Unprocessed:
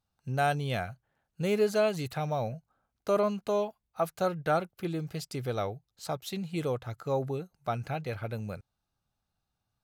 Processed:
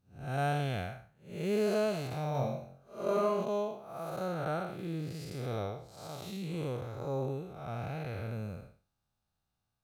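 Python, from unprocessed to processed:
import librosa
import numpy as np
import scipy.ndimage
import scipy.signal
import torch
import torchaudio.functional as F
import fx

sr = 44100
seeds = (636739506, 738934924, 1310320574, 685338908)

y = fx.spec_blur(x, sr, span_ms=232.0)
y = fx.room_flutter(y, sr, wall_m=3.8, rt60_s=0.44, at=(2.33, 3.43), fade=0.02)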